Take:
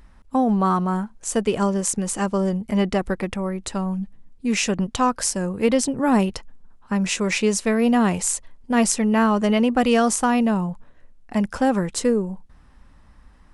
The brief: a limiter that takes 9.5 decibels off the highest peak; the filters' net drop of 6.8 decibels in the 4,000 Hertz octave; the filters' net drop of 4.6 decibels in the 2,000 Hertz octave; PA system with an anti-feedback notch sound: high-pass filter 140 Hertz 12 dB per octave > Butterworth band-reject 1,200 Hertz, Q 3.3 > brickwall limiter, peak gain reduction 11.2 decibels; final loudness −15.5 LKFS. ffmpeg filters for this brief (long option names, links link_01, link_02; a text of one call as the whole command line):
ffmpeg -i in.wav -af "equalizer=frequency=2000:width_type=o:gain=-3.5,equalizer=frequency=4000:width_type=o:gain=-9,alimiter=limit=-14.5dB:level=0:latency=1,highpass=140,asuperstop=centerf=1200:order=8:qfactor=3.3,volume=16.5dB,alimiter=limit=-8dB:level=0:latency=1" out.wav